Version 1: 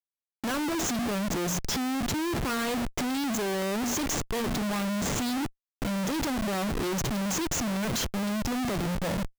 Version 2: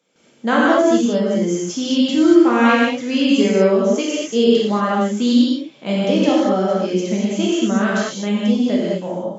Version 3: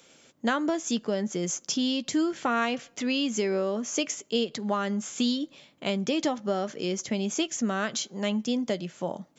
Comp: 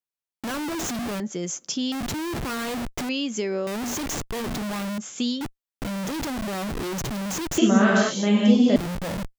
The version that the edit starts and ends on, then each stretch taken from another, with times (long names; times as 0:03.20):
1
0:01.20–0:01.92: punch in from 3
0:03.09–0:03.67: punch in from 3
0:04.98–0:05.41: punch in from 3
0:07.58–0:08.76: punch in from 2